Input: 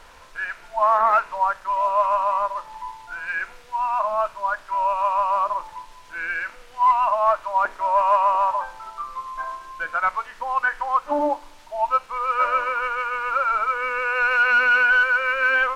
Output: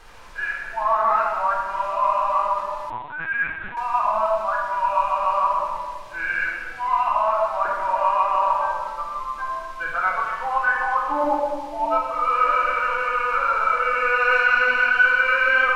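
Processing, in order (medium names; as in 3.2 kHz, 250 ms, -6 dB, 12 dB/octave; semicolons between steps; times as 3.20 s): peak limiter -14 dBFS, peak gain reduction 6.5 dB; simulated room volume 1800 m³, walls mixed, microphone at 3.8 m; 2.90–3.77 s: LPC vocoder at 8 kHz pitch kept; trim -3.5 dB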